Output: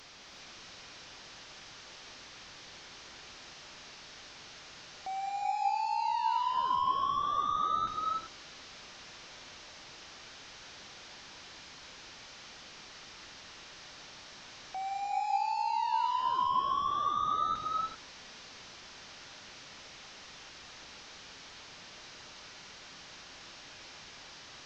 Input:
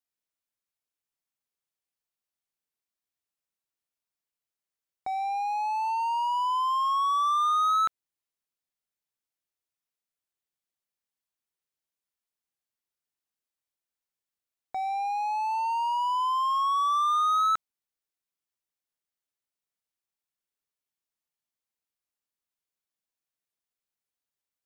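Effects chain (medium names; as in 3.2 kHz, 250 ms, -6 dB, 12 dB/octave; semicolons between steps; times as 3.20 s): one-bit delta coder 32 kbps, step -39.5 dBFS; gated-style reverb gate 410 ms rising, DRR 0 dB; trim -6.5 dB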